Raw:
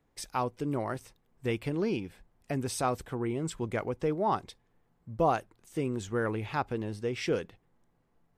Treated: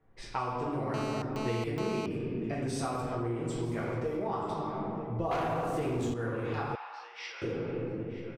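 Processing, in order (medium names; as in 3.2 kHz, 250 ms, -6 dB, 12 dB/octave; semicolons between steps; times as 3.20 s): delay 936 ms -20.5 dB; 3.57–4.15 s: small samples zeroed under -46.5 dBFS; reverberation RT60 1.9 s, pre-delay 5 ms, DRR -7.5 dB; 5.31–6.14 s: waveshaping leveller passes 3; level-controlled noise filter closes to 2.1 kHz, open at -18 dBFS; compression 10:1, threshold -30 dBFS, peak gain reduction 18 dB; 0.94–2.06 s: mobile phone buzz -37 dBFS; 6.75–7.42 s: elliptic band-pass 840–5400 Hz, stop band 70 dB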